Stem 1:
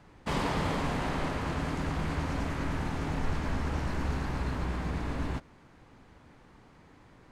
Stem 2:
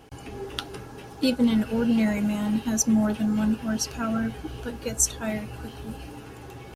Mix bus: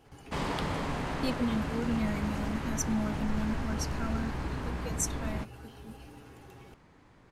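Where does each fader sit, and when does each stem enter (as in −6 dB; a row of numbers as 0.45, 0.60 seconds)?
−2.5, −10.0 decibels; 0.05, 0.00 seconds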